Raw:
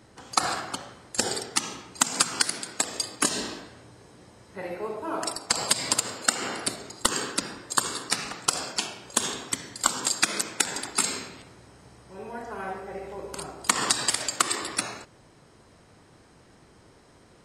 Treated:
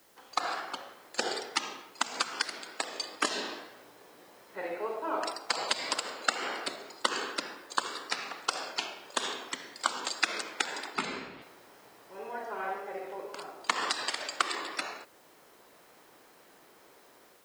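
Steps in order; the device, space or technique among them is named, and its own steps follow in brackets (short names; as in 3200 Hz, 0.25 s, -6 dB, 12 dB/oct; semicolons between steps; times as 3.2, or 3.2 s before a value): dictaphone (BPF 400–4200 Hz; AGC gain up to 7 dB; wow and flutter; white noise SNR 28 dB); 10.95–11.42 tone controls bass +15 dB, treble -10 dB; gain -7 dB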